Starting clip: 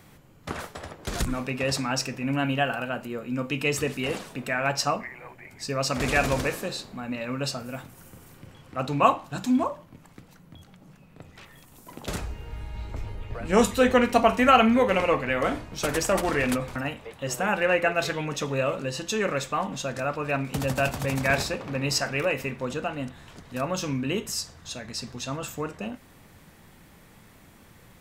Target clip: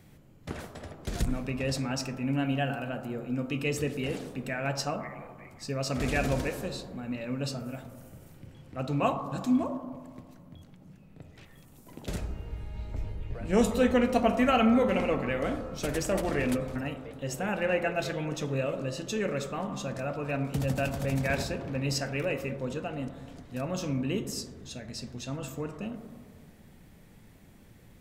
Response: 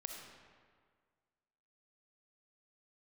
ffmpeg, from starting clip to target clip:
-filter_complex "[0:a]asplit=2[a][b];[b]lowpass=f=1.3k:w=0.5412,lowpass=f=1.3k:w=1.3066[c];[1:a]atrim=start_sample=2205,lowshelf=f=390:g=7[d];[c][d]afir=irnorm=-1:irlink=0,volume=-1.5dB[e];[a][e]amix=inputs=2:normalize=0,volume=-7dB"

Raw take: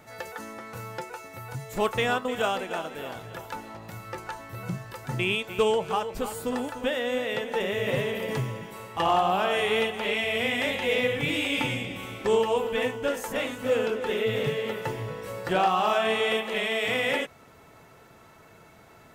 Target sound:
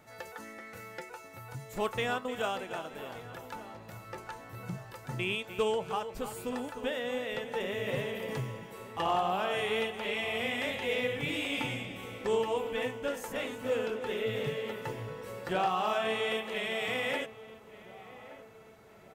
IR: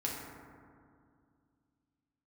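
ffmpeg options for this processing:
-filter_complex "[0:a]asettb=1/sr,asplit=3[a][b][c];[a]atrim=end=0.444[d];[b]atrim=start=0.44:end=1.09,asetpts=PTS-STARTPTS,afade=t=in:d=0.004:c=qsin,afade=t=out:st=0.646:d=0.004:c=qsin,equalizer=f=125:t=o:w=0.33:g=-12,equalizer=f=1k:t=o:w=0.33:g=-10,equalizer=f=2k:t=o:w=0.33:g=9[e];[c]atrim=start=1.086[f];[d][e]acrossfade=d=0.004:c1=hsin:c2=qsin[g];[g][f]acrossfade=d=0.004:c1=qsin:c2=hsin,asplit=2[h][i];[i]adelay=1172,lowpass=f=1.5k:p=1,volume=-16dB,asplit=2[j][k];[k]adelay=1172,lowpass=f=1.5k:p=1,volume=0.51,asplit=2[l][m];[m]adelay=1172,lowpass=f=1.5k:p=1,volume=0.51,asplit=2[n][o];[o]adelay=1172,lowpass=f=1.5k:p=1,volume=0.51,asplit=2[p][q];[q]adelay=1172,lowpass=f=1.5k:p=1,volume=0.51[r];[h][j][l][n][p][r]amix=inputs=6:normalize=0,volume=-6.5dB"

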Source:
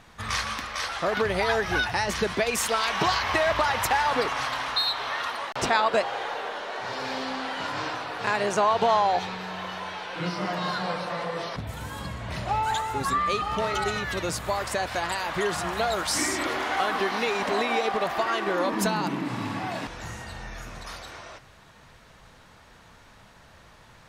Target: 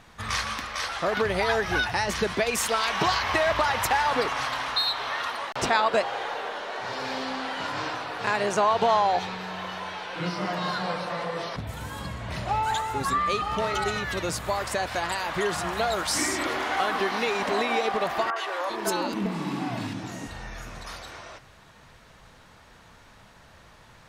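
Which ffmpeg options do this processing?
-filter_complex "[0:a]asettb=1/sr,asplit=3[a][b][c];[a]atrim=end=18.304[d];[b]atrim=start=18.3:end=20.31,asetpts=PTS-STARTPTS,afade=t=in:d=0.004:c=qsin,afade=t=out:st=2.006:d=0.004:c=qsin,acrossover=split=520|1700[e][f][g];[g]adelay=60[h];[e]adelay=400[i];[i][f][h]amix=inputs=3:normalize=0,atrim=end_sample=88641[j];[c]atrim=start=20.306[k];[d][j]acrossfade=d=0.004:c1=hsin:c2=qsin[l];[l][k]acrossfade=d=0.004:c1=qsin:c2=hsin"

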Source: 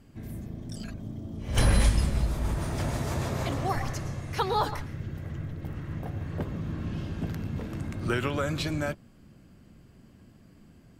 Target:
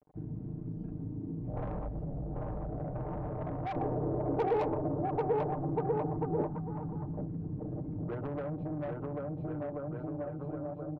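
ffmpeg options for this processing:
-filter_complex "[0:a]dynaudnorm=f=490:g=5:m=5dB,acrusher=bits=7:mix=0:aa=0.000001,afwtdn=0.0501,lowpass=f=780:t=q:w=1.9,lowshelf=f=70:g=-8.5,aecho=1:1:6.6:0.7,aecho=1:1:790|1382|1827|2160|2410:0.631|0.398|0.251|0.158|0.1,asoftclip=type=tanh:threshold=-18.5dB,acompressor=threshold=-37dB:ratio=10,asettb=1/sr,asplit=3[a][b][c];[a]atrim=end=3.764[d];[b]atrim=start=3.76:end=6.47,asetpts=PTS-STARTPTS,afade=t=in:d=0.004:c=qsin,afade=t=out:st=2.706:d=0.004:c=qsin,equalizer=f=380:w=1.1:g=12.5[e];[c]atrim=start=6.466[f];[d][e]acrossfade=d=0.004:c1=hsin:c2=qsin[g];[g][f]acrossfade=d=0.004:c1=qsin:c2=hsin,volume=2dB"

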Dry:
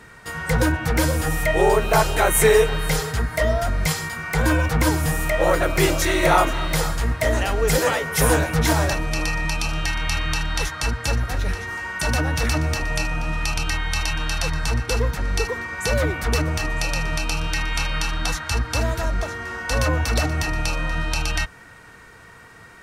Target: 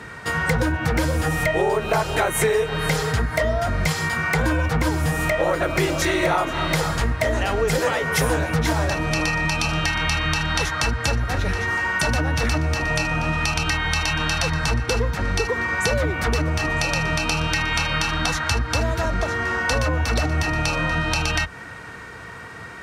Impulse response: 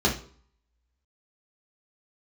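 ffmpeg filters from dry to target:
-af "highpass=f=55:w=0.5412,highpass=f=55:w=1.3066,highshelf=f=8.3k:g=-11,acompressor=threshold=-27dB:ratio=5,volume=8.5dB"

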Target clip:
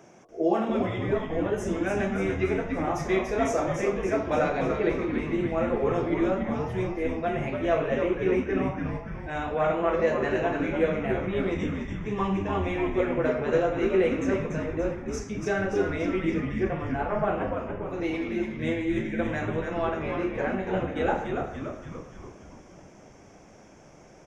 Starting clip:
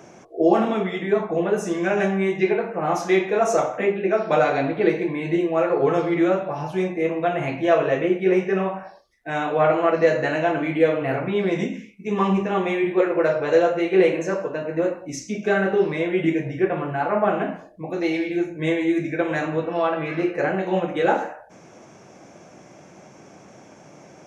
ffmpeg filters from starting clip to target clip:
-filter_complex "[0:a]bandreject=f=4.2k:w=9.6,asplit=9[a][b][c][d][e][f][g][h][i];[b]adelay=288,afreqshift=-110,volume=-5dB[j];[c]adelay=576,afreqshift=-220,volume=-9.6dB[k];[d]adelay=864,afreqshift=-330,volume=-14.2dB[l];[e]adelay=1152,afreqshift=-440,volume=-18.7dB[m];[f]adelay=1440,afreqshift=-550,volume=-23.3dB[n];[g]adelay=1728,afreqshift=-660,volume=-27.9dB[o];[h]adelay=2016,afreqshift=-770,volume=-32.5dB[p];[i]adelay=2304,afreqshift=-880,volume=-37.1dB[q];[a][j][k][l][m][n][o][p][q]amix=inputs=9:normalize=0,volume=-7dB"

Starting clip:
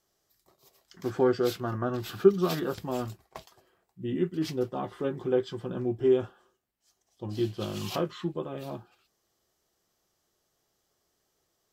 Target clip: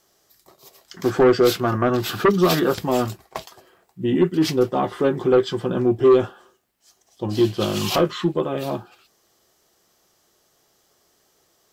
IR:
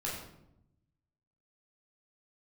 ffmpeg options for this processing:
-filter_complex "[0:a]lowshelf=f=130:g=-7.5,asplit=2[a][b];[b]aeval=exprs='0.376*sin(PI/2*3.55*val(0)/0.376)':c=same,volume=-4dB[c];[a][c]amix=inputs=2:normalize=0"

